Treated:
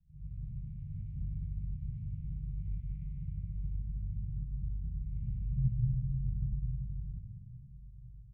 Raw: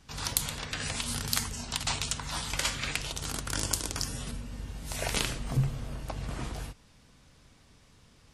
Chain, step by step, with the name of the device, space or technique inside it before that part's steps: Chebyshev band-stop 180–2200 Hz, order 5; next room (low-pass 660 Hz 24 dB/octave; reverberation RT60 0.60 s, pre-delay 56 ms, DRR -6.5 dB); dynamic bell 330 Hz, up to +3 dB, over -48 dBFS, Q 0.96; doubling 35 ms -12 dB; plate-style reverb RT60 4.1 s, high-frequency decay 0.85×, pre-delay 115 ms, DRR -2 dB; trim -9 dB

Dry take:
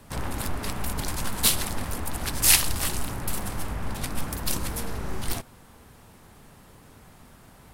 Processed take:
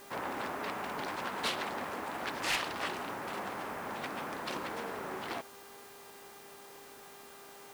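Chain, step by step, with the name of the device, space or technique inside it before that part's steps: aircraft radio (band-pass 370–2400 Hz; hard clipper -27 dBFS, distortion -12 dB; mains buzz 400 Hz, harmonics 37, -56 dBFS -5 dB/octave; white noise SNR 18 dB)

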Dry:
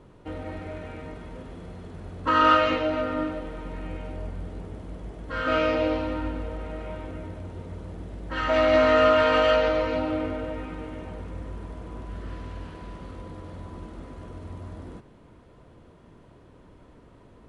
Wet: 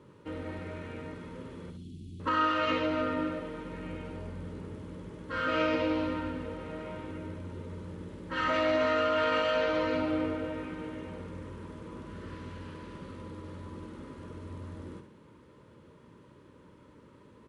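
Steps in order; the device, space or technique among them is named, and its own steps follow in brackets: 1.70–2.20 s: elliptic band-stop 310–3100 Hz, stop band 40 dB; PA system with an anti-feedback notch (high-pass 100 Hz 12 dB/octave; Butterworth band-stop 710 Hz, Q 3.5; peak limiter -17.5 dBFS, peak gain reduction 10 dB); feedback delay 67 ms, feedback 23%, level -8.5 dB; trim -2.5 dB

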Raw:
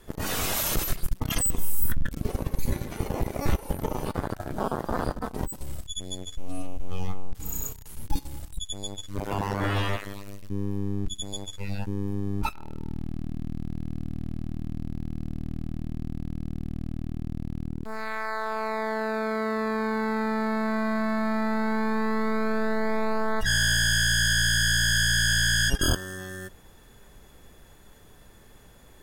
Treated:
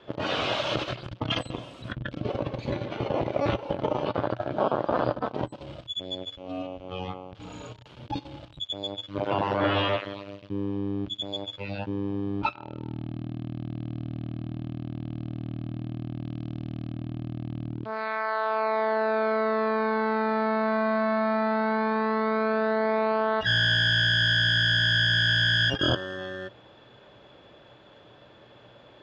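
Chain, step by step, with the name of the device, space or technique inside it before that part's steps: 16.23–16.94 s: treble shelf 5.3 kHz +8.5 dB; overdrive pedal into a guitar cabinet (overdrive pedal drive 9 dB, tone 5 kHz, clips at -12 dBFS; cabinet simulation 95–4000 Hz, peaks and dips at 120 Hz +10 dB, 310 Hz +6 dB, 580 Hz +9 dB, 1.9 kHz -6 dB, 3.1 kHz +4 dB)

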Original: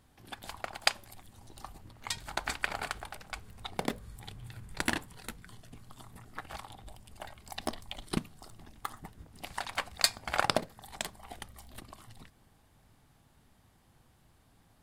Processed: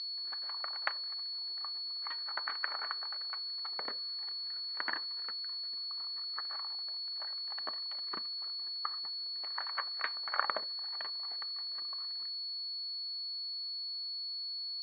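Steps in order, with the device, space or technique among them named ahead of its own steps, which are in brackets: toy sound module (decimation joined by straight lines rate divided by 4×; class-D stage that switches slowly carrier 4.4 kHz; cabinet simulation 720–4900 Hz, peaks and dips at 750 Hz -8 dB, 1.2 kHz +6 dB, 1.8 kHz +5 dB, 2.6 kHz -8 dB, 4.6 kHz -8 dB); trim -2.5 dB

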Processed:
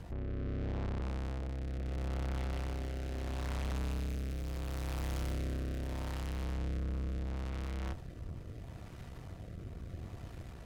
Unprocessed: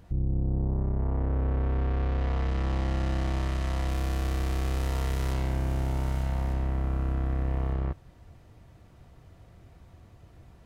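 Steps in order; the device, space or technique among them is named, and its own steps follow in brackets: 3.71–4.32 s: comb 0.8 ms, depth 94%; overdriven rotary cabinet (valve stage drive 46 dB, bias 0.7; rotary cabinet horn 0.75 Hz); trim +12 dB

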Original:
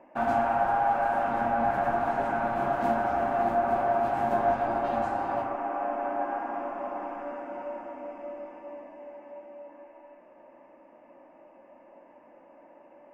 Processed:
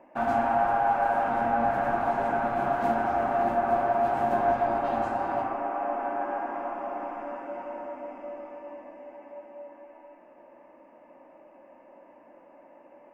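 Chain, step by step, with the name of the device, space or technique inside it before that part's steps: filtered reverb send (on a send: high-pass 290 Hz 12 dB/octave + low-pass 3.1 kHz + reverberation RT60 0.95 s, pre-delay 112 ms, DRR 7 dB)

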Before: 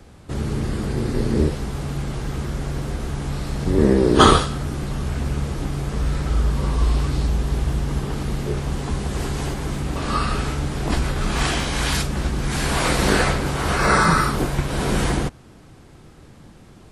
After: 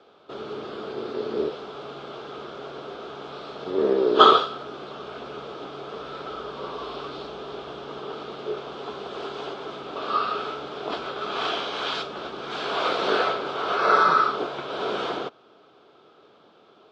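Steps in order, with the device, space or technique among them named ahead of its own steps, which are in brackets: phone earpiece (cabinet simulation 410–4400 Hz, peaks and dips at 420 Hz +9 dB, 650 Hz +6 dB, 1.3 kHz +9 dB, 1.9 kHz -10 dB, 3.4 kHz +7 dB); trim -5.5 dB

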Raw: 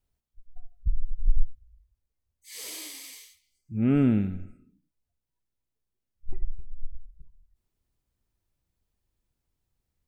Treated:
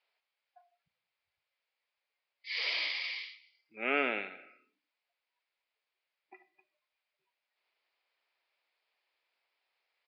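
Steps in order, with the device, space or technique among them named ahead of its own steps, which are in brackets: musical greeting card (resampled via 11.025 kHz; high-pass 560 Hz 24 dB/octave; peaking EQ 2.3 kHz +9 dB 0.6 oct); trim +6.5 dB

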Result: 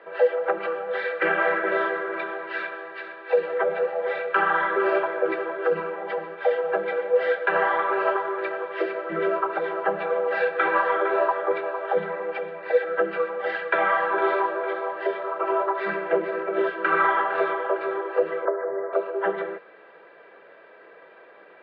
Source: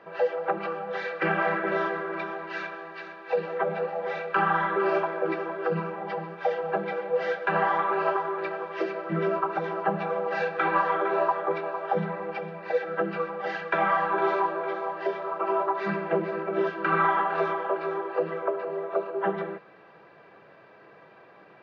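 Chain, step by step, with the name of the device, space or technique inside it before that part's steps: 18.45–18.93 s: steep low-pass 2.1 kHz 96 dB/octave; phone earpiece (cabinet simulation 450–3600 Hz, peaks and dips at 470 Hz +3 dB, 770 Hz -6 dB, 1.1 kHz -6 dB, 2.6 kHz -5 dB); trim +6 dB

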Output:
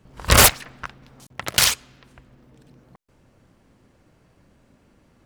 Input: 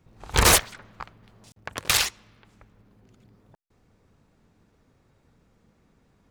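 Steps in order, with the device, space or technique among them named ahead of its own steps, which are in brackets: nightcore (tape speed +20%); trim +5 dB

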